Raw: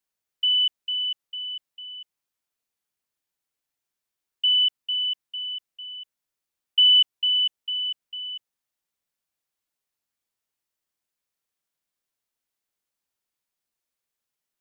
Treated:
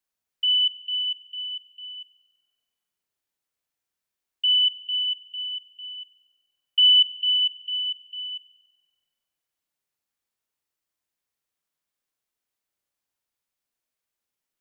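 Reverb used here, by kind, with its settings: spring tank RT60 1.3 s, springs 32 ms, chirp 60 ms, DRR 5.5 dB; trim -1 dB

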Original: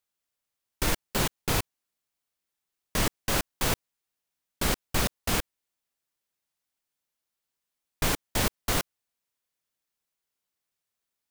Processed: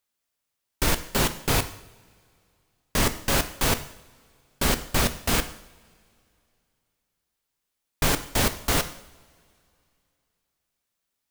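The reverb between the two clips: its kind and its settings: two-slope reverb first 0.68 s, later 2.8 s, from -21 dB, DRR 9 dB; trim +3.5 dB

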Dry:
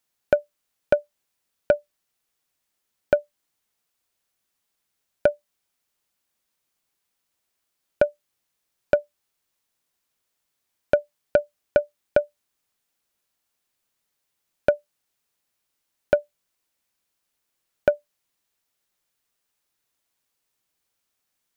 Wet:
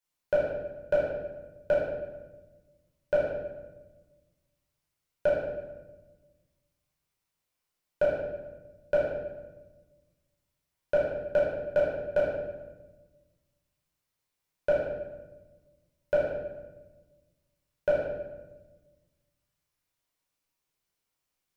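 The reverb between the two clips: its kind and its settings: simulated room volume 710 m³, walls mixed, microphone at 5 m; trim -14.5 dB

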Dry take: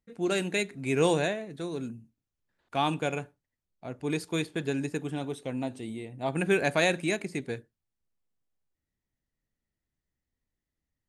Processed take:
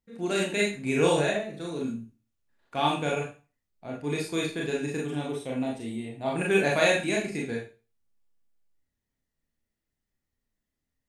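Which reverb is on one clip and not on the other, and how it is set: Schroeder reverb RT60 0.33 s, combs from 27 ms, DRR -2.5 dB; trim -2 dB

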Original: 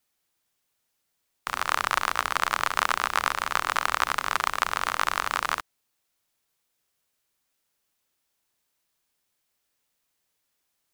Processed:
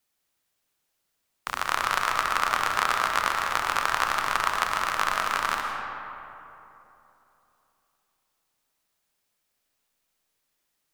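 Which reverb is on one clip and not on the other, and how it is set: algorithmic reverb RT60 3.2 s, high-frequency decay 0.45×, pre-delay 75 ms, DRR 2.5 dB; trim -1 dB

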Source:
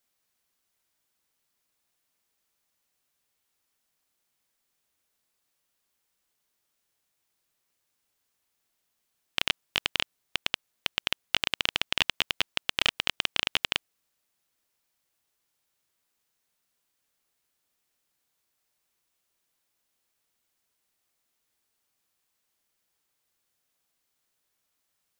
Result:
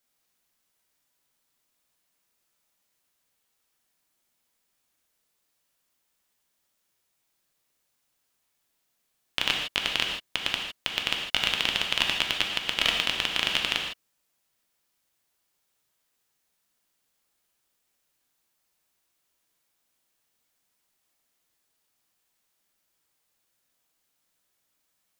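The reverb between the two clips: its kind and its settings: gated-style reverb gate 180 ms flat, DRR 1 dB

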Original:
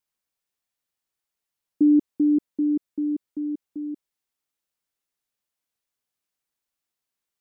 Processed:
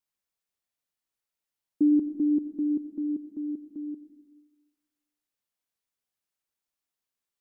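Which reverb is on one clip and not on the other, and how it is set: algorithmic reverb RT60 1.2 s, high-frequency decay 0.75×, pre-delay 40 ms, DRR 9.5 dB; trim -4 dB

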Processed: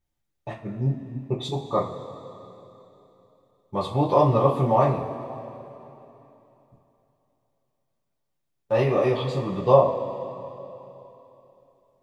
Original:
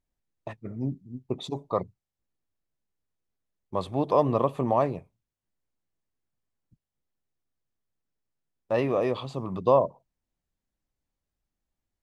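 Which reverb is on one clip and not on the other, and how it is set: two-slope reverb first 0.27 s, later 3.2 s, from -18 dB, DRR -6.5 dB; trim -2.5 dB

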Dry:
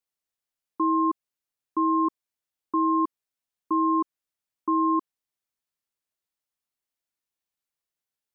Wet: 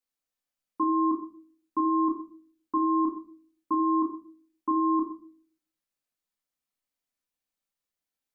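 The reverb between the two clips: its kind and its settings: simulated room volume 350 m³, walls furnished, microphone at 2 m; trim -3.5 dB

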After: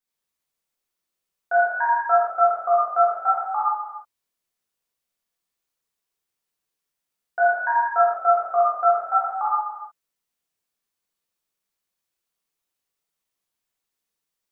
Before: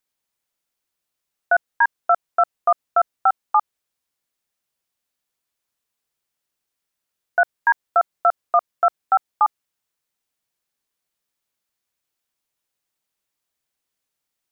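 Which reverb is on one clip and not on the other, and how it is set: gated-style reverb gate 460 ms falling, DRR -8 dB; trim -10.5 dB

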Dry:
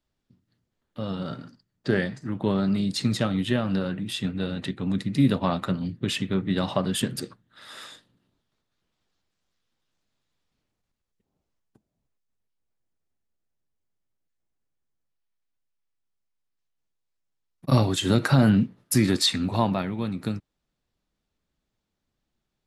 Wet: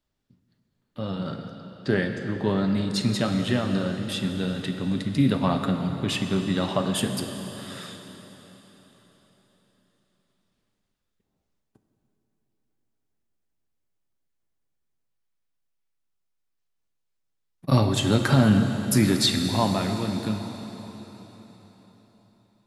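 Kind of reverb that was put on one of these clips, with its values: plate-style reverb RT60 4.3 s, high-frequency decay 0.95×, DRR 5 dB

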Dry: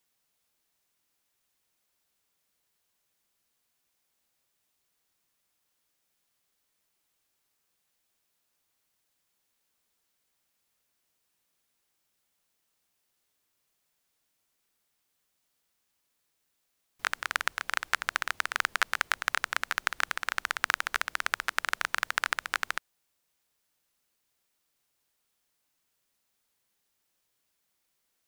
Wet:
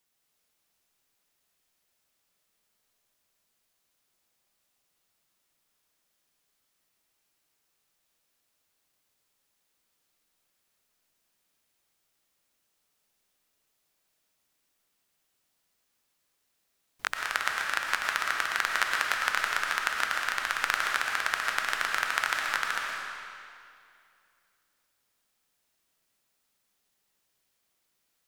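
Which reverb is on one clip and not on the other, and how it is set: algorithmic reverb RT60 2.4 s, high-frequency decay 0.9×, pre-delay 75 ms, DRR -0.5 dB; trim -1 dB

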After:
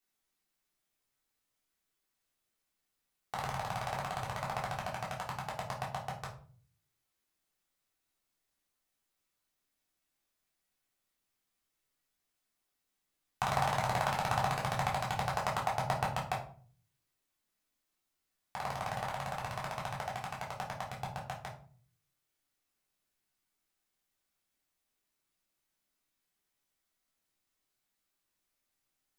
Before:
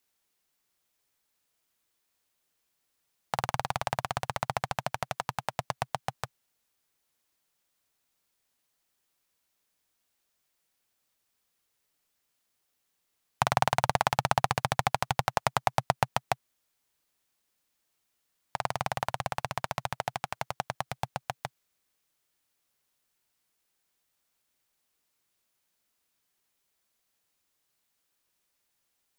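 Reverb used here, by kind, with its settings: simulated room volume 370 m³, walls furnished, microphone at 3.5 m; trim -11 dB

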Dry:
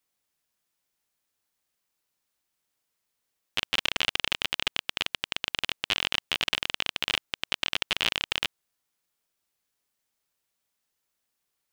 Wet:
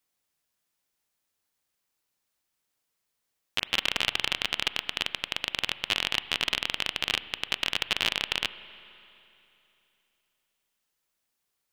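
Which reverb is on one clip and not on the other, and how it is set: spring tank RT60 3 s, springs 33/41 ms, chirp 75 ms, DRR 14 dB

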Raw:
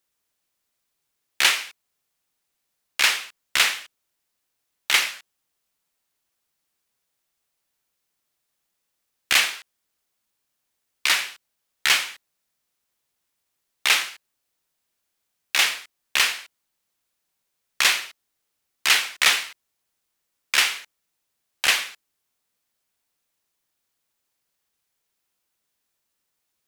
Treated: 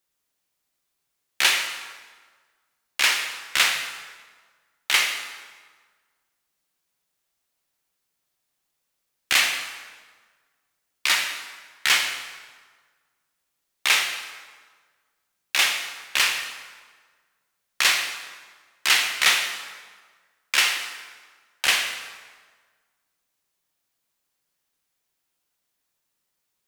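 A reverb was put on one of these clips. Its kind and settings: plate-style reverb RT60 1.5 s, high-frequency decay 0.75×, DRR 3.5 dB; trim -1.5 dB

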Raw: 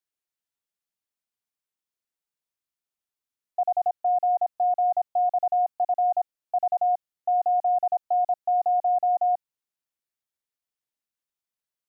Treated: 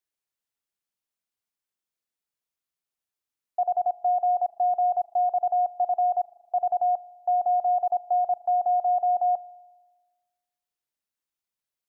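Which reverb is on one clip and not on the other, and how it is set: spring tank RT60 1.3 s, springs 39 ms, chirp 60 ms, DRR 18 dB

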